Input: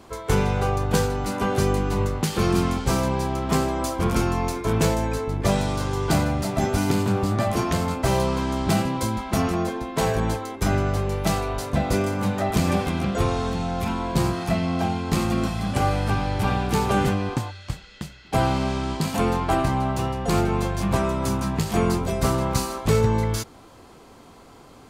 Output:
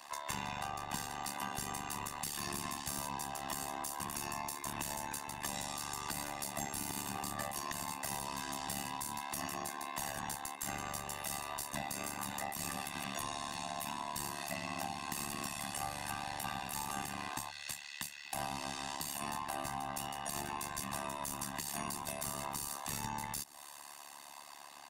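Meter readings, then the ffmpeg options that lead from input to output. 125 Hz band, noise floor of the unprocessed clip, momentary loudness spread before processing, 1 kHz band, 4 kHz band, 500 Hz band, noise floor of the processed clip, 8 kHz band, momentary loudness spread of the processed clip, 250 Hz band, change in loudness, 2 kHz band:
-26.0 dB, -48 dBFS, 4 LU, -13.0 dB, -9.5 dB, -23.0 dB, -52 dBFS, -5.0 dB, 2 LU, -23.0 dB, -16.0 dB, -11.5 dB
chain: -filter_complex "[0:a]aderivative,aecho=1:1:1.1:0.93,acrossover=split=750|7600[a][b][c];[c]dynaudnorm=f=420:g=7:m=11.5dB[d];[a][b][d]amix=inputs=3:normalize=0,alimiter=limit=-15.5dB:level=0:latency=1:release=78,tremolo=f=72:d=0.947,asplit=2[e][f];[f]highpass=f=720:p=1,volume=9dB,asoftclip=type=tanh:threshold=-15.5dB[g];[e][g]amix=inputs=2:normalize=0,lowpass=f=1.1k:p=1,volume=-6dB,acrossover=split=330[h][i];[i]acompressor=threshold=-52dB:ratio=6[j];[h][j]amix=inputs=2:normalize=0,volume=14dB"

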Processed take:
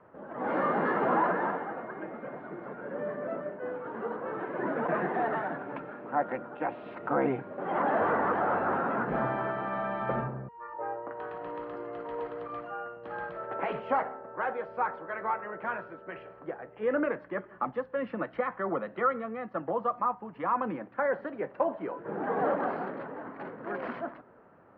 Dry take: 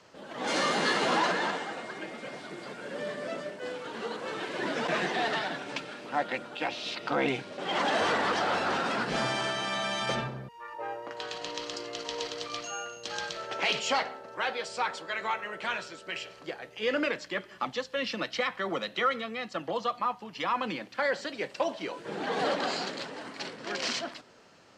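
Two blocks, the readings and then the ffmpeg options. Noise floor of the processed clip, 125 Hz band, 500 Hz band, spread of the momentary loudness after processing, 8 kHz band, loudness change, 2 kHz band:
-53 dBFS, +1.5 dB, +1.5 dB, 12 LU, under -35 dB, -1.0 dB, -5.0 dB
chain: -af "lowpass=f=1.5k:w=0.5412,lowpass=f=1.5k:w=1.3066,volume=1.5dB"

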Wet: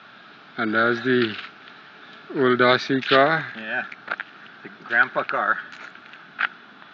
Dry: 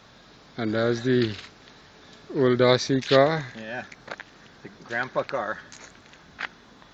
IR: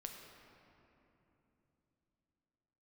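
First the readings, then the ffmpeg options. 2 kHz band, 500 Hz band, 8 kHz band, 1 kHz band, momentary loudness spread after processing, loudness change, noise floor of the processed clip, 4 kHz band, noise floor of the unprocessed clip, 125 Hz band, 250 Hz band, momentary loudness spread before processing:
+10.0 dB, 0.0 dB, n/a, +7.0 dB, 22 LU, +3.0 dB, -47 dBFS, +3.0 dB, -52 dBFS, -5.0 dB, +1.5 dB, 20 LU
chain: -af "aemphasis=mode=production:type=riaa,asoftclip=type=hard:threshold=-10dB,highpass=f=110:w=0.5412,highpass=f=110:w=1.3066,equalizer=f=200:t=q:w=4:g=3,equalizer=f=510:t=q:w=4:g=-10,equalizer=f=1k:t=q:w=4:g=-7,equalizer=f=1.4k:t=q:w=4:g=7,equalizer=f=2k:t=q:w=4:g=-6,lowpass=f=2.8k:w=0.5412,lowpass=f=2.8k:w=1.3066,volume=7.5dB"

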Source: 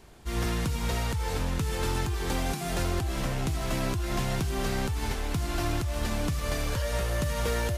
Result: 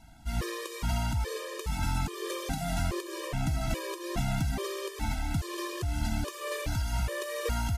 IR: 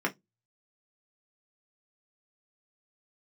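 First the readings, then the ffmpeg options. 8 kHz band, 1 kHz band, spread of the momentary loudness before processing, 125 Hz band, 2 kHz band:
-3.0 dB, -2.5 dB, 2 LU, -2.5 dB, -3.0 dB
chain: -af "aecho=1:1:194:0.224,acontrast=86,afftfilt=real='re*gt(sin(2*PI*1.2*pts/sr)*(1-2*mod(floor(b*sr/1024/320),2)),0)':imag='im*gt(sin(2*PI*1.2*pts/sr)*(1-2*mod(floor(b*sr/1024/320),2)),0)':win_size=1024:overlap=0.75,volume=-7dB"

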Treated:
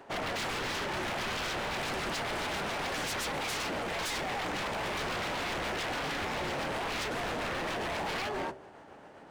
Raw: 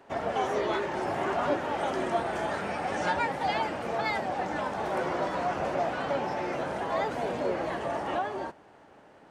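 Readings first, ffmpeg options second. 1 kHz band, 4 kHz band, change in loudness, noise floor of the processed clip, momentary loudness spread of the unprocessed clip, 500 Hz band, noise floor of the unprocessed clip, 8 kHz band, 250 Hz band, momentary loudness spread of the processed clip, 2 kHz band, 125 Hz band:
-5.5 dB, +6.5 dB, -3.0 dB, -52 dBFS, 3 LU, -7.0 dB, -55 dBFS, +9.0 dB, -4.5 dB, 1 LU, +0.5 dB, -1.0 dB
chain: -af "tremolo=f=7.4:d=0.28,bandreject=f=64.4:t=h:w=4,bandreject=f=128.8:t=h:w=4,bandreject=f=193.2:t=h:w=4,bandreject=f=257.6:t=h:w=4,bandreject=f=322:t=h:w=4,bandreject=f=386.4:t=h:w=4,bandreject=f=450.8:t=h:w=4,bandreject=f=515.2:t=h:w=4,bandreject=f=579.6:t=h:w=4,bandreject=f=644:t=h:w=4,aeval=exprs='0.02*(abs(mod(val(0)/0.02+3,4)-2)-1)':c=same,volume=4.5dB"

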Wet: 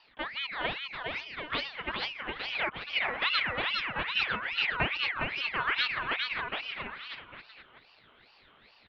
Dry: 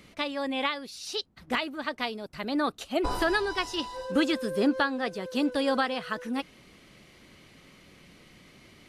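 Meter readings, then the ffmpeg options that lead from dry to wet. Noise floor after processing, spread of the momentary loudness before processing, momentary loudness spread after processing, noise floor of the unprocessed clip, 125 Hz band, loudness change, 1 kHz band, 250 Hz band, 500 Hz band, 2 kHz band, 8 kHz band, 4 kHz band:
-61 dBFS, 8 LU, 9 LU, -56 dBFS, +0.5 dB, -1.5 dB, -3.0 dB, -17.0 dB, -11.0 dB, +3.0 dB, under -20 dB, +2.5 dB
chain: -af "highpass=f=340:t=q:w=0.5412,highpass=f=340:t=q:w=1.307,lowpass=f=2.3k:t=q:w=0.5176,lowpass=f=2.3k:t=q:w=0.7071,lowpass=f=2.3k:t=q:w=1.932,afreqshift=-280,aecho=1:1:410|738|1000|1210|1378:0.631|0.398|0.251|0.158|0.1,aeval=exprs='val(0)*sin(2*PI*2000*n/s+2000*0.4/2.4*sin(2*PI*2.4*n/s))':c=same"

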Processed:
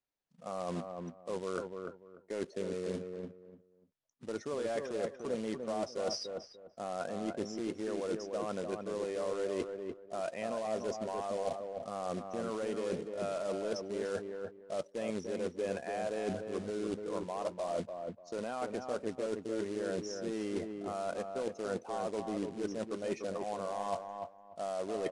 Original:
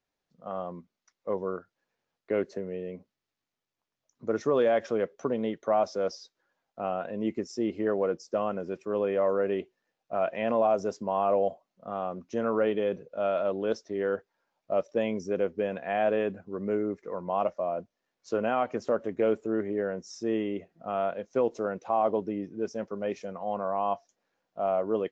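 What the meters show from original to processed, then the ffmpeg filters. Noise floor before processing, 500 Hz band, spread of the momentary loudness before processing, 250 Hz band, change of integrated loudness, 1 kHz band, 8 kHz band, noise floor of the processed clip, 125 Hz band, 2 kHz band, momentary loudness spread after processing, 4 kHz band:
under -85 dBFS, -8.0 dB, 10 LU, -6.5 dB, -8.0 dB, -9.0 dB, n/a, -62 dBFS, -4.5 dB, -7.0 dB, 7 LU, +0.5 dB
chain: -filter_complex "[0:a]afftdn=nr=16:nf=-51,adynamicequalizer=threshold=0.00282:dfrequency=190:dqfactor=6.1:tfrequency=190:tqfactor=6.1:attack=5:release=100:ratio=0.375:range=2:mode=cutabove:tftype=bell,acontrast=89,alimiter=limit=-14dB:level=0:latency=1:release=58,areverse,acompressor=threshold=-34dB:ratio=12,areverse,acrusher=bits=3:mode=log:mix=0:aa=0.000001,asplit=2[a][b];[b]adelay=294,lowpass=f=1.4k:p=1,volume=-4.5dB,asplit=2[c][d];[d]adelay=294,lowpass=f=1.4k:p=1,volume=0.24,asplit=2[e][f];[f]adelay=294,lowpass=f=1.4k:p=1,volume=0.24[g];[a][c][e][g]amix=inputs=4:normalize=0,aresample=22050,aresample=44100"

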